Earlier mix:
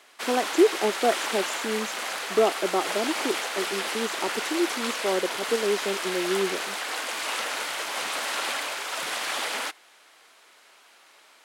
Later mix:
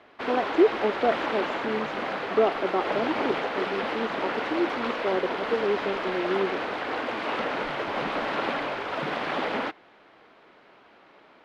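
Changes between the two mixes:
background: remove high-pass filter 1,300 Hz 6 dB per octave
master: add high-frequency loss of the air 320 metres

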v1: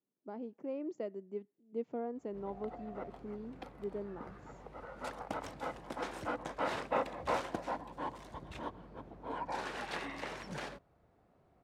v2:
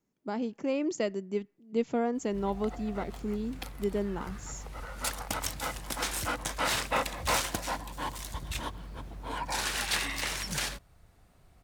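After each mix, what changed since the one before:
speech +8.5 dB
master: remove resonant band-pass 450 Hz, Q 0.74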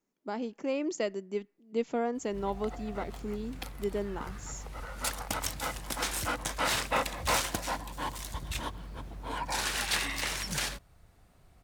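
speech: add parametric band 99 Hz −15 dB 1.4 octaves

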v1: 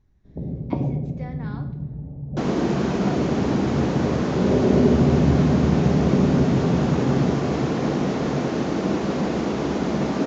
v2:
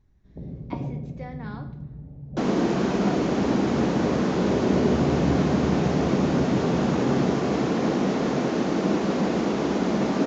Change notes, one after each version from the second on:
first sound −7.0 dB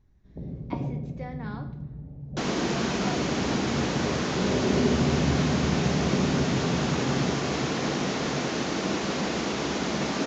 second sound: add tilt shelving filter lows −7 dB, about 1,300 Hz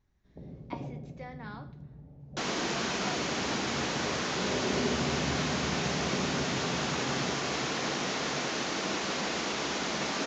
speech: send −7.5 dB
master: add low-shelf EQ 480 Hz −10.5 dB

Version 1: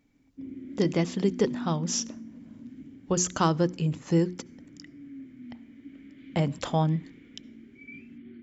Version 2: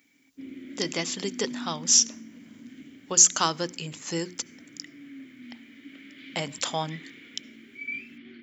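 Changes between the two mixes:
background +7.5 dB
master: add spectral tilt +4.5 dB per octave

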